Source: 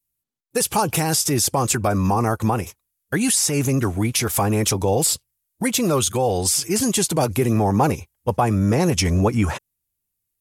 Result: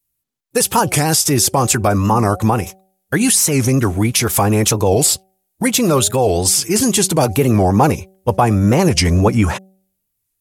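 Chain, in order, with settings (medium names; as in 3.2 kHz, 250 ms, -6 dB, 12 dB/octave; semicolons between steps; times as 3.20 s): de-hum 190.1 Hz, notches 4; warped record 45 rpm, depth 160 cents; trim +5.5 dB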